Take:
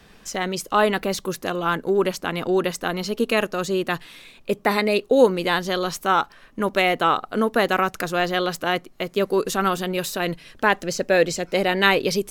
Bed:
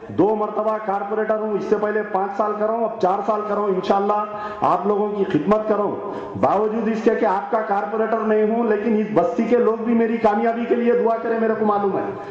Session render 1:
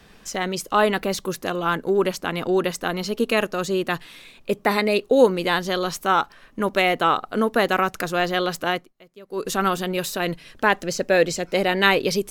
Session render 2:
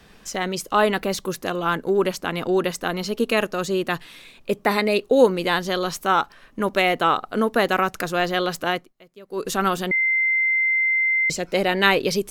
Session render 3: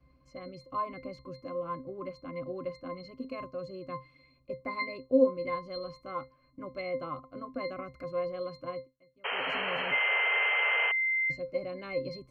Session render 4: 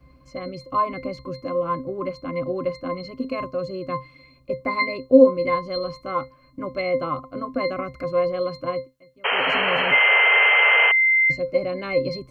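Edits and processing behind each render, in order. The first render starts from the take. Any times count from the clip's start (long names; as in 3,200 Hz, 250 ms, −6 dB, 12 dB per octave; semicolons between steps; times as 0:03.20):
0:08.69–0:09.52: duck −22.5 dB, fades 0.24 s
0:09.91–0:11.30: beep over 2,080 Hz −17 dBFS
resonances in every octave C, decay 0.2 s; 0:09.24–0:10.92: sound drawn into the spectrogram noise 400–3,200 Hz −33 dBFS
level +11.5 dB; brickwall limiter −2 dBFS, peak gain reduction 1.5 dB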